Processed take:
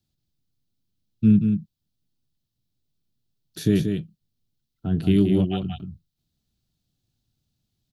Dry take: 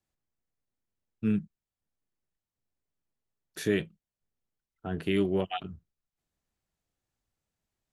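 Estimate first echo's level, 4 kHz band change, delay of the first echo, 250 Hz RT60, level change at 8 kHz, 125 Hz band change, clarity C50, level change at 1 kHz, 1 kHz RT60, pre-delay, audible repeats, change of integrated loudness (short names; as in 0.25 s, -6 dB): -6.0 dB, +3.5 dB, 0.182 s, none, +4.0 dB, +13.5 dB, none, -1.5 dB, none, none, 1, +8.5 dB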